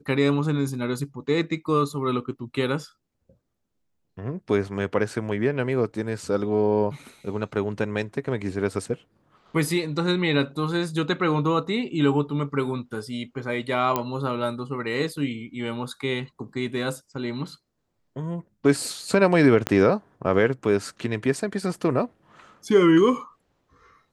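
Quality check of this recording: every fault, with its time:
13.96 s: pop -9 dBFS
19.67 s: pop -8 dBFS

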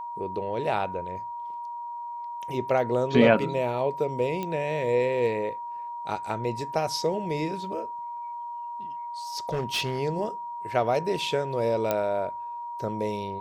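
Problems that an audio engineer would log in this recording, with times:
whine 950 Hz -33 dBFS
4.43 s: pop -18 dBFS
9.49–9.99 s: clipped -23.5 dBFS
11.91 s: pop -11 dBFS

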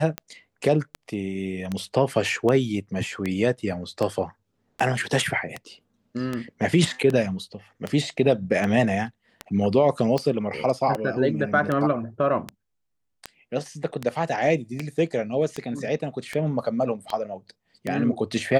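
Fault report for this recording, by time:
tick 78 rpm -14 dBFS

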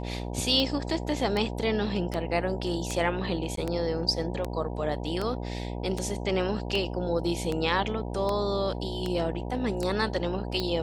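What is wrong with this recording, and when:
buzz 60 Hz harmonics 16 -34 dBFS
tick 78 rpm -16 dBFS
3.56–3.57 s: dropout 13 ms

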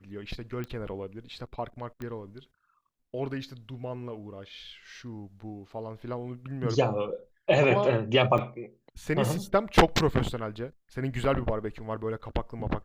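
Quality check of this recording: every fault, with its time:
0.64 s: pop -24 dBFS
2.02 s: pop -25 dBFS
8.38 s: dropout 4.2 ms

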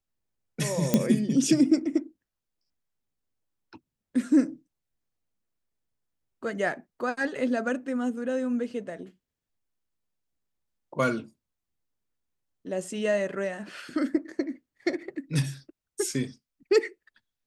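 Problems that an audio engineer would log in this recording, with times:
0.94 s: pop -7 dBFS

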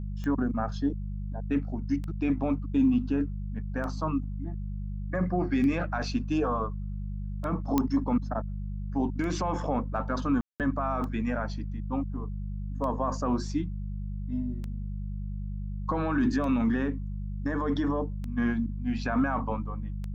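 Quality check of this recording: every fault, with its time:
hum 50 Hz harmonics 4 -34 dBFS
tick 33 1/3 rpm -25 dBFS
7.78 s: pop -11 dBFS
10.41–10.60 s: dropout 188 ms

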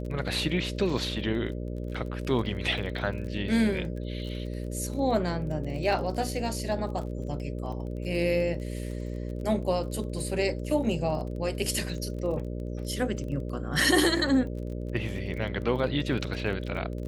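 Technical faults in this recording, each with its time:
buzz 60 Hz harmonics 10 -34 dBFS
crackle 26 per s -36 dBFS

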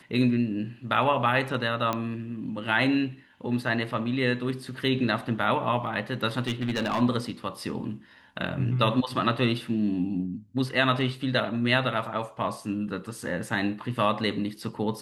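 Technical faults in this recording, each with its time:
1.93 s: pop -13 dBFS
6.40–7.02 s: clipped -22 dBFS

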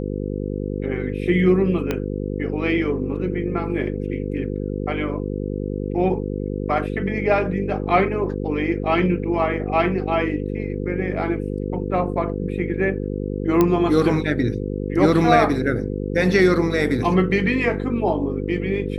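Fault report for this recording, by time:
buzz 50 Hz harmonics 10 -26 dBFS
1.91 s: pop -9 dBFS
13.61 s: pop -5 dBFS

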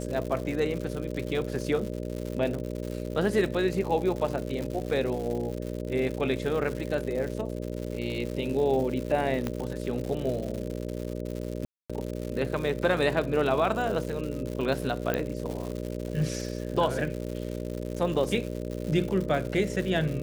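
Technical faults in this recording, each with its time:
buzz 60 Hz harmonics 10 -34 dBFS
crackle 180 per s -33 dBFS
9.47 s: pop -16 dBFS
11.65–11.90 s: dropout 246 ms
15.14 s: pop -13 dBFS

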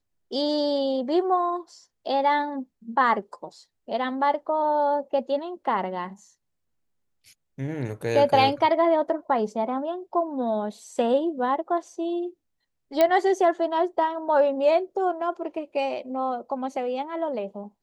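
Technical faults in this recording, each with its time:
13.01 s: pop -8 dBFS

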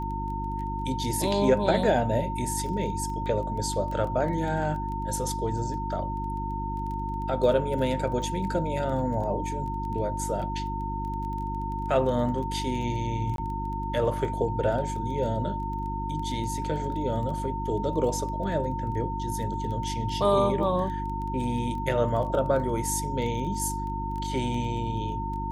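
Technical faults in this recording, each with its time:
crackle 12 per s -34 dBFS
hum 50 Hz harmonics 7 -33 dBFS
whine 910 Hz -32 dBFS
13.36–13.38 s: dropout 22 ms

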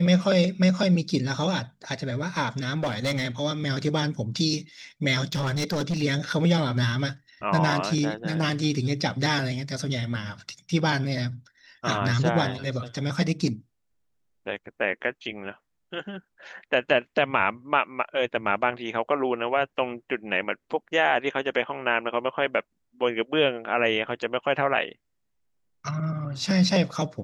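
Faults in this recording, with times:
2.77–3.25 s: clipped -21.5 dBFS
5.32–6.03 s: clipped -22.5 dBFS

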